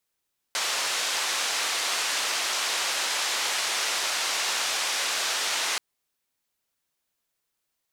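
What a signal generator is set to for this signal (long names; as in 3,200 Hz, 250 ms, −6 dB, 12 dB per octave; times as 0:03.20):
band-limited noise 600–6,100 Hz, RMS −27.5 dBFS 5.23 s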